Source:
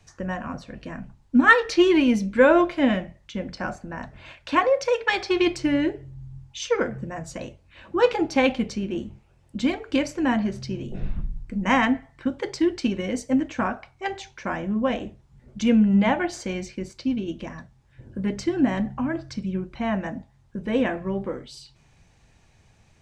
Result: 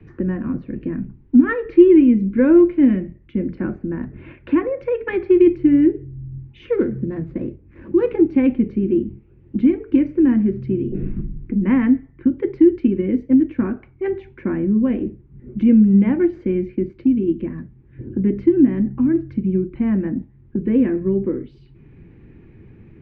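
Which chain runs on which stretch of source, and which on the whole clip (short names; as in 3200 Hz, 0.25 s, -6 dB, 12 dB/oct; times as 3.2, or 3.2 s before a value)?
6.72–8.11 median filter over 15 samples + high shelf 6200 Hz +9 dB
whole clip: Chebyshev low-pass 2300 Hz, order 3; resonant low shelf 490 Hz +11 dB, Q 3; three-band squash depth 40%; gain -6.5 dB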